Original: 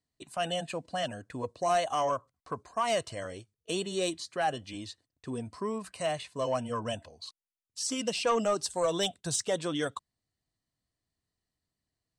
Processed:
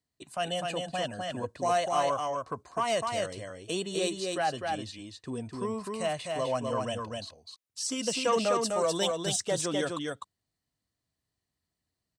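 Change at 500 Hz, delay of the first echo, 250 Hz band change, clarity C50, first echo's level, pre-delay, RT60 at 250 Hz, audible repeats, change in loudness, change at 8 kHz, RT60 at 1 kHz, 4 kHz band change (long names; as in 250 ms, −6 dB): +1.5 dB, 253 ms, +1.5 dB, no reverb audible, −3.5 dB, no reverb audible, no reverb audible, 1, +1.5 dB, +1.5 dB, no reverb audible, +1.5 dB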